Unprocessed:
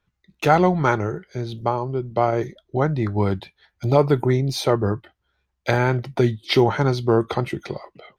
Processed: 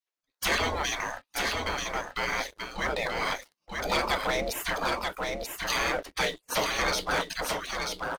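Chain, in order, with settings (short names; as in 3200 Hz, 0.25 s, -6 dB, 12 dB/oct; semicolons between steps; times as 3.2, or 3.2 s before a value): spectral gate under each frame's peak -25 dB weak; dynamic EQ 540 Hz, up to +5 dB, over -54 dBFS, Q 0.97; sample leveller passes 3; on a send: echo 0.935 s -4 dB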